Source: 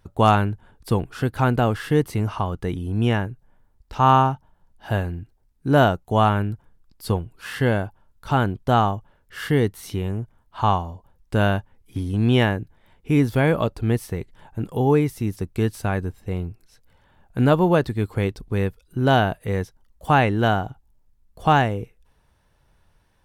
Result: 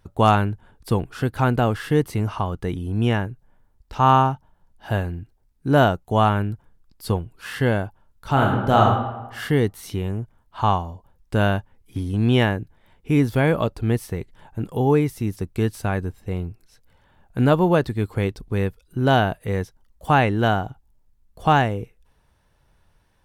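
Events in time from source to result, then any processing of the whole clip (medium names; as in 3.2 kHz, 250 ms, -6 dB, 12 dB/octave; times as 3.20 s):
8.32–8.82 s: reverb throw, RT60 1.1 s, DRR -0.5 dB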